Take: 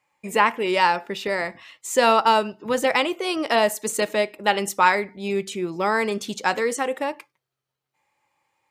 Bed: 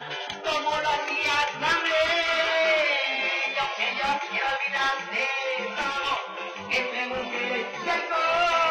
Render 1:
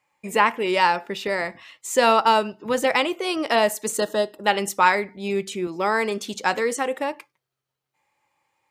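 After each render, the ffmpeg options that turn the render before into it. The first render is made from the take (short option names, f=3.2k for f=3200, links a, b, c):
-filter_complex "[0:a]asettb=1/sr,asplit=3[a][b][c];[a]atrim=end=3.984[d];[b]atrim=start=3.98:end=4.44,asetpts=PTS-STARTPTS,afade=t=in:d=0.004:c=qsin,afade=t=out:st=0.456:d=0.004:c=qsin,asuperstop=centerf=2300:order=4:qfactor=2.1[e];[c]atrim=start=4.436[f];[d][e]acrossfade=d=0.004:c1=hsin:c2=qsin[g];[g][f]acrossfade=d=0.004:c1=qsin:c2=hsin,asettb=1/sr,asplit=3[h][i][j];[h]atrim=end=5.674[k];[i]atrim=start=5.67:end=6.34,asetpts=PTS-STARTPTS,afade=t=in:d=0.004:c=qsin,afade=t=out:st=0.666:d=0.004:c=qsin,highpass=190[l];[j]atrim=start=6.336[m];[k][l]acrossfade=d=0.004:c1=hsin:c2=qsin[n];[n][m]acrossfade=d=0.004:c1=qsin:c2=hsin"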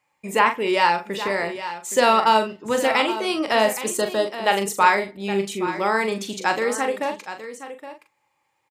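-filter_complex "[0:a]asplit=2[a][b];[b]adelay=41,volume=-7.5dB[c];[a][c]amix=inputs=2:normalize=0,aecho=1:1:819:0.237"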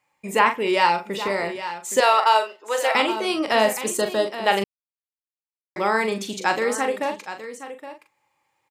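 -filter_complex "[0:a]asettb=1/sr,asplit=3[a][b][c];[a]atrim=end=0.864[d];[b]atrim=start=0.86:end=1.45,asetpts=PTS-STARTPTS,afade=t=in:d=0.004:c=qsin,afade=t=out:st=0.586:d=0.004:c=qsin,bandreject=f=1.7k:w=7.4[e];[c]atrim=start=1.446[f];[d][e]acrossfade=d=0.004:c1=hsin:c2=qsin[g];[g][f]acrossfade=d=0.004:c1=qsin:c2=hsin,asettb=1/sr,asplit=3[h][i][j];[h]atrim=end=2.004[k];[i]atrim=start=2:end=2.95,asetpts=PTS-STARTPTS,afade=t=in:d=0.004:c=qsin,afade=t=out:st=0.946:d=0.004:c=qsin,highpass=f=480:w=0.5412,highpass=f=480:w=1.3066[l];[j]atrim=start=2.946[m];[k][l]acrossfade=d=0.004:c1=hsin:c2=qsin[n];[n][m]acrossfade=d=0.004:c1=qsin:c2=hsin,asplit=3[o][p][q];[o]atrim=end=4.64,asetpts=PTS-STARTPTS,afade=t=out:st=4.636:d=0.004:c=hsin[r];[p]atrim=start=4.64:end=5.76,asetpts=PTS-STARTPTS,volume=0[s];[q]atrim=start=5.76,asetpts=PTS-STARTPTS,afade=t=in:d=0.004:c=hsin[t];[r][s][t]concat=n=3:v=0:a=1"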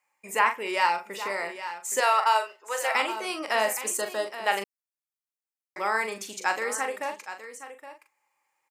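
-af "highpass=f=1.3k:p=1,equalizer=f=3.6k:t=o:w=0.77:g=-9.5"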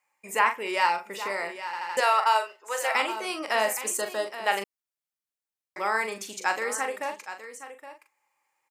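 -filter_complex "[0:a]asplit=5[a][b][c][d][e];[a]atrim=end=1.732[f];[b]atrim=start=1.648:end=1.732[g];[c]atrim=start=1.648:end=1.732[h];[d]atrim=start=1.648:end=1.732[i];[e]atrim=start=1.968[j];[f][g]acrossfade=d=0.004:c1=hsin:c2=hsin[k];[k][h]acrossfade=d=0.004:c1=hsin:c2=hsin[l];[l][i]acrossfade=d=0.004:c1=hsin:c2=hsin[m];[m][j]acrossfade=d=0.004:c1=hsin:c2=hsin"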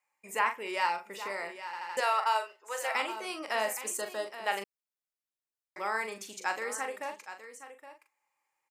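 -af "volume=-6dB"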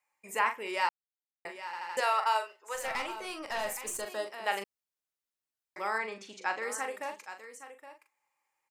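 -filter_complex "[0:a]asettb=1/sr,asplit=3[a][b][c];[a]atrim=end=2.754[d];[b]atrim=start=2.75:end=4.07,asetpts=PTS-STARTPTS,afade=t=in:d=0.004:c=qsin,afade=t=out:st=1.316:d=0.004:c=qsin,aeval=exprs='(tanh(22.4*val(0)+0.35)-tanh(0.35))/22.4':c=same[e];[c]atrim=start=4.066[f];[d][e]acrossfade=d=0.004:c1=hsin:c2=qsin[g];[g][f]acrossfade=d=0.004:c1=qsin:c2=hsin,asettb=1/sr,asplit=3[h][i][j];[h]atrim=end=5.984[k];[i]atrim=start=5.98:end=6.63,asetpts=PTS-STARTPTS,afade=t=in:d=0.004:c=qsin,afade=t=out:st=0.646:d=0.004:c=qsin,lowpass=4.3k[l];[j]atrim=start=6.626[m];[k][l]acrossfade=d=0.004:c1=hsin:c2=qsin[n];[n][m]acrossfade=d=0.004:c1=qsin:c2=hsin,asplit=3[o][p][q];[o]atrim=end=0.89,asetpts=PTS-STARTPTS,afade=t=out:st=0.886:d=0.004:c=hsin[r];[p]atrim=start=0.89:end=1.45,asetpts=PTS-STARTPTS,volume=0[s];[q]atrim=start=1.45,asetpts=PTS-STARTPTS,afade=t=in:d=0.004:c=hsin[t];[r][s][t]concat=n=3:v=0:a=1"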